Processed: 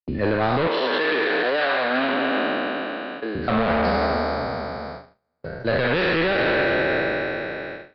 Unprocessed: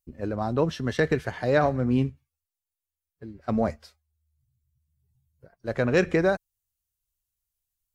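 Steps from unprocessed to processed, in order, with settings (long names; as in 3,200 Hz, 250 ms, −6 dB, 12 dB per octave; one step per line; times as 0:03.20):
peak hold with a decay on every bin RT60 2.71 s
soft clipping −22.5 dBFS, distortion −8 dB
0:00.67–0:03.35: high-pass filter 280 Hz 24 dB per octave
noise gate −48 dBFS, range −40 dB
Butterworth low-pass 4,600 Hz 72 dB per octave
high-shelf EQ 2,100 Hz +8 dB
brickwall limiter −23.5 dBFS, peak gain reduction 9 dB
parametric band 1,600 Hz +2.5 dB 0.77 octaves
multiband upward and downward compressor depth 40%
level +9 dB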